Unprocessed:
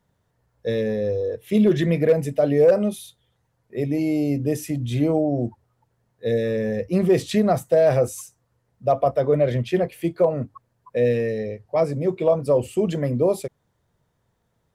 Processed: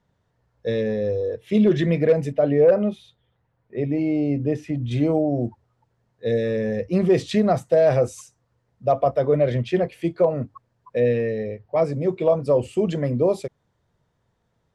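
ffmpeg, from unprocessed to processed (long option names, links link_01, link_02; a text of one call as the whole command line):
ffmpeg -i in.wav -af "asetnsamples=nb_out_samples=441:pad=0,asendcmd='2.32 lowpass f 2800;4.91 lowpass f 6500;11 lowpass f 3600;11.82 lowpass f 6700',lowpass=5900" out.wav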